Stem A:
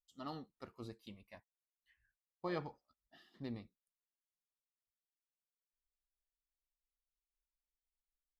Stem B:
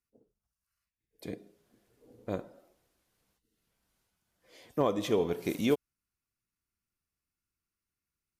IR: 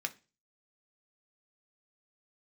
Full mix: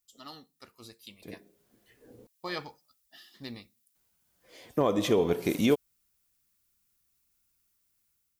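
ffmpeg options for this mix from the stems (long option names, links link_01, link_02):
-filter_complex "[0:a]crystalizer=i=7.5:c=0,volume=-7dB,asplit=3[link_01][link_02][link_03];[link_02]volume=-9dB[link_04];[1:a]alimiter=limit=-19.5dB:level=0:latency=1:release=79,volume=-0.5dB,asplit=3[link_05][link_06][link_07];[link_05]atrim=end=2.27,asetpts=PTS-STARTPTS,afade=type=out:start_time=2.266:duration=0.004:curve=hsin[link_08];[link_06]atrim=start=2.27:end=3.95,asetpts=PTS-STARTPTS,volume=0[link_09];[link_07]atrim=start=3.95,asetpts=PTS-STARTPTS,afade=type=in:duration=0.004:curve=hsin[link_10];[link_08][link_09][link_10]concat=n=3:v=0:a=1[link_11];[link_03]apad=whole_len=370312[link_12];[link_11][link_12]sidechaincompress=threshold=-55dB:ratio=5:attack=5.1:release=1340[link_13];[2:a]atrim=start_sample=2205[link_14];[link_04][link_14]afir=irnorm=-1:irlink=0[link_15];[link_01][link_13][link_15]amix=inputs=3:normalize=0,dynaudnorm=framelen=810:gausssize=3:maxgain=6dB"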